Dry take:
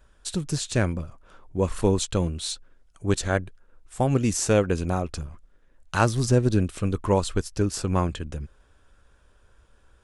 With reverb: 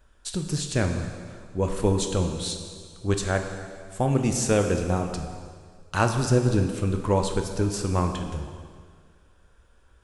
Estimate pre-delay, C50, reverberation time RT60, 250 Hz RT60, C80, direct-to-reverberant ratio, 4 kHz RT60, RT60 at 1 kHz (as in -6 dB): 8 ms, 6.5 dB, 1.9 s, 1.9 s, 7.5 dB, 4.5 dB, 1.8 s, 1.9 s